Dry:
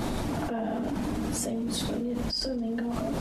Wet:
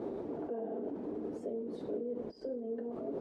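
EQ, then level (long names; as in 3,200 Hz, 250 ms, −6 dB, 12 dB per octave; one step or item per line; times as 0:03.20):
resonant band-pass 420 Hz, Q 4.3
+2.0 dB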